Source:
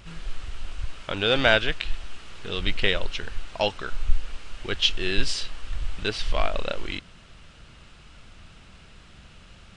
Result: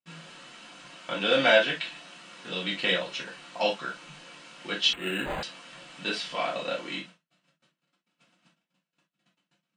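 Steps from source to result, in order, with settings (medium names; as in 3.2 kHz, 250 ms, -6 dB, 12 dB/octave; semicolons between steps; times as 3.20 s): gate -43 dBFS, range -43 dB; elliptic high-pass 160 Hz, stop band 40 dB; comb of notches 400 Hz; gated-style reverb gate 90 ms falling, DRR -4.5 dB; 4.93–5.43 s: decimation joined by straight lines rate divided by 8×; trim -4.5 dB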